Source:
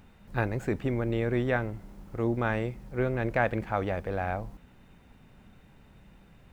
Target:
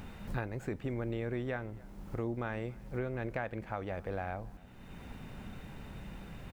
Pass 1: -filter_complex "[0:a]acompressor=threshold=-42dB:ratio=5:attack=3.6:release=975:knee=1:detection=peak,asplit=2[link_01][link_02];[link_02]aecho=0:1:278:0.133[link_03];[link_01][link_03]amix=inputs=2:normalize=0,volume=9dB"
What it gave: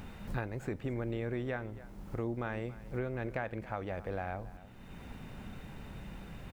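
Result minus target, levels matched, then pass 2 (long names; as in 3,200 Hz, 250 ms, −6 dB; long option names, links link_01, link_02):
echo-to-direct +7 dB
-filter_complex "[0:a]acompressor=threshold=-42dB:ratio=5:attack=3.6:release=975:knee=1:detection=peak,asplit=2[link_01][link_02];[link_02]aecho=0:1:278:0.0596[link_03];[link_01][link_03]amix=inputs=2:normalize=0,volume=9dB"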